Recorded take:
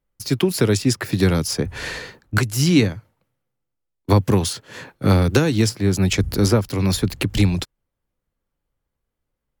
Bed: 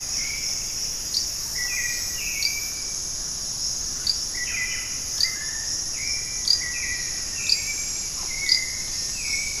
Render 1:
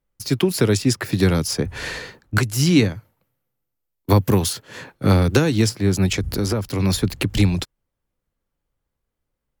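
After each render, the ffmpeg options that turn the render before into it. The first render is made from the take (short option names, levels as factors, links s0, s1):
-filter_complex "[0:a]asettb=1/sr,asplit=3[s0][s1][s2];[s0]atrim=end=2.954[s3];[s1]atrim=start=2.95:end=4.62,asetpts=PTS-STARTPTS,afade=t=in:d=0.004:c=qsin,afade=t=out:st=1.666:d=0.004:c=qsin,equalizer=f=14000:t=o:w=0.36:g=13.5[s4];[s2]atrim=start=4.616[s5];[s3][s4]acrossfade=d=0.004:c1=hsin:c2=qsin[s6];[s6][s5]acrossfade=d=0.004:c1=qsin:c2=hsin,asettb=1/sr,asplit=3[s7][s8][s9];[s7]atrim=end=6.064[s10];[s8]atrim=start=6.06:end=6.8,asetpts=PTS-STARTPTS,afade=t=in:d=0.004:c=qsin,afade=t=out:st=0.736:d=0.004:c=qsin,acompressor=threshold=0.141:ratio=6:attack=3.2:release=140:knee=1:detection=peak[s11];[s9]atrim=start=6.796[s12];[s10][s11]acrossfade=d=0.004:c1=hsin:c2=qsin[s13];[s13][s12]acrossfade=d=0.004:c1=qsin:c2=hsin"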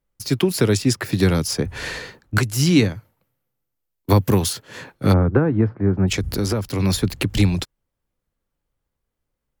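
-filter_complex "[0:a]asplit=3[s0][s1][s2];[s0]afade=t=out:st=5.12:d=0.02[s3];[s1]lowpass=f=1500:w=0.5412,lowpass=f=1500:w=1.3066,afade=t=in:st=5.12:d=0.02,afade=t=out:st=6.07:d=0.02[s4];[s2]afade=t=in:st=6.07:d=0.02[s5];[s3][s4][s5]amix=inputs=3:normalize=0"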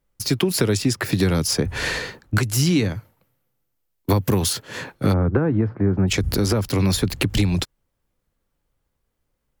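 -filter_complex "[0:a]asplit=2[s0][s1];[s1]alimiter=limit=0.15:level=0:latency=1:release=87,volume=0.708[s2];[s0][s2]amix=inputs=2:normalize=0,acompressor=threshold=0.178:ratio=6"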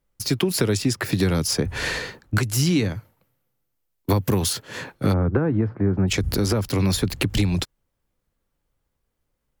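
-af "volume=0.841"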